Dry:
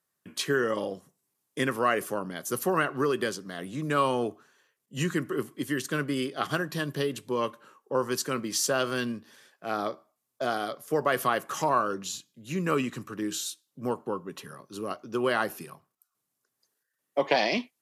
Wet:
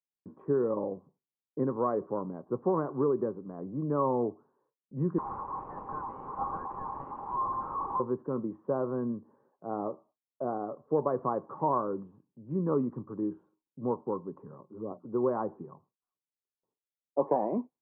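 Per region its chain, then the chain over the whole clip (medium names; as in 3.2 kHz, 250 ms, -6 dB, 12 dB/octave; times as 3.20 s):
5.18–8.00 s: one-bit delta coder 32 kbps, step -28.5 dBFS + rippled Chebyshev high-pass 770 Hz, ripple 9 dB + overdrive pedal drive 28 dB, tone 1.5 kHz, clips at -17.5 dBFS
14.63–15.05 s: hum notches 60/120/180/240 Hz + touch-sensitive flanger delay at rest 6.4 ms, full sweep at -29.5 dBFS
whole clip: gate with hold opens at -56 dBFS; elliptic low-pass 1 kHz, stop band 80 dB; peaking EQ 670 Hz -5.5 dB 0.3 oct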